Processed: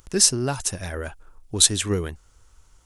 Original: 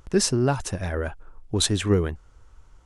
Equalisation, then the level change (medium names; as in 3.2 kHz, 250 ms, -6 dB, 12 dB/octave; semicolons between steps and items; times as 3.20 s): treble shelf 2.5 kHz +8.5 dB; treble shelf 6.1 kHz +9 dB; -4.0 dB